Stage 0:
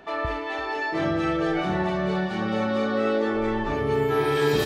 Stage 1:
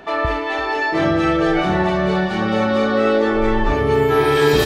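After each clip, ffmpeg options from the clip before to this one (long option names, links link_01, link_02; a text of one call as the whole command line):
ffmpeg -i in.wav -af "asubboost=boost=3.5:cutoff=71,volume=8dB" out.wav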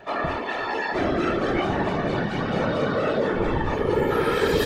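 ffmpeg -i in.wav -af "asoftclip=type=tanh:threshold=-5.5dB,afftfilt=real='hypot(re,im)*cos(2*PI*random(0))':imag='hypot(re,im)*sin(2*PI*random(1))':win_size=512:overlap=0.75" out.wav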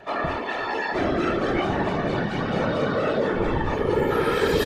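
ffmpeg -i in.wav -af "aresample=32000,aresample=44100" out.wav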